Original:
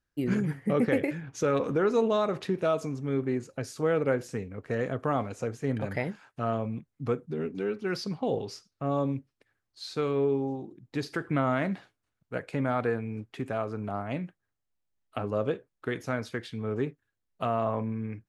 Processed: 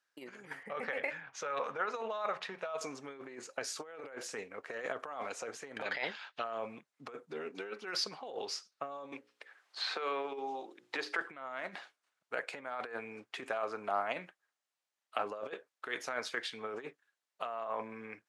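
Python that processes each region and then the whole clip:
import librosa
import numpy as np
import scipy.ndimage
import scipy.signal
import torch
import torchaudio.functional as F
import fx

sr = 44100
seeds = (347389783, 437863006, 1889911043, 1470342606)

y = fx.chain(x, sr, fx.lowpass(hz=2100.0, slope=6),
    fx.peak_eq(hz=330.0, db=-14.0, octaves=0.9),
    fx.hum_notches(base_hz=60, count=5), at=(0.63, 2.81))
y = fx.chain(y, sr, fx.lowpass(hz=4900.0, slope=12),
    fx.peak_eq(hz=3600.0, db=13.0, octaves=1.1), at=(5.83, 6.44))
y = fx.chain(y, sr, fx.bass_treble(bass_db=-13, treble_db=-9),
    fx.hum_notches(base_hz=60, count=9),
    fx.band_squash(depth_pct=70), at=(9.12, 11.21))
y = scipy.signal.sosfilt(scipy.signal.butter(2, 8800.0, 'lowpass', fs=sr, output='sos'), y)
y = fx.over_compress(y, sr, threshold_db=-32.0, ratio=-0.5)
y = scipy.signal.sosfilt(scipy.signal.butter(2, 720.0, 'highpass', fs=sr, output='sos'), y)
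y = y * librosa.db_to_amplitude(2.0)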